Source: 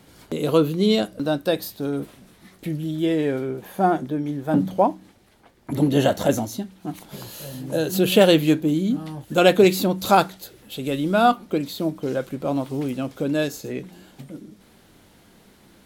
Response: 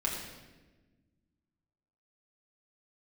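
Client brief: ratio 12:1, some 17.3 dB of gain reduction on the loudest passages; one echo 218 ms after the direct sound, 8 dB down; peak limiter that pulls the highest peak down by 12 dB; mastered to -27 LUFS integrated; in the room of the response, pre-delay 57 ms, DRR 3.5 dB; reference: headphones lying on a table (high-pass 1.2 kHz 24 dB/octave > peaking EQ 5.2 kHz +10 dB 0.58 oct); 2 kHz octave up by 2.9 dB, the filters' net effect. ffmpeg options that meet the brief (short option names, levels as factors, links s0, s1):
-filter_complex "[0:a]equalizer=f=2000:t=o:g=4,acompressor=threshold=0.0447:ratio=12,alimiter=level_in=1.58:limit=0.0631:level=0:latency=1,volume=0.631,aecho=1:1:218:0.398,asplit=2[s0][s1];[1:a]atrim=start_sample=2205,adelay=57[s2];[s1][s2]afir=irnorm=-1:irlink=0,volume=0.335[s3];[s0][s3]amix=inputs=2:normalize=0,highpass=f=1200:w=0.5412,highpass=f=1200:w=1.3066,equalizer=f=5200:t=o:w=0.58:g=10,volume=4.47"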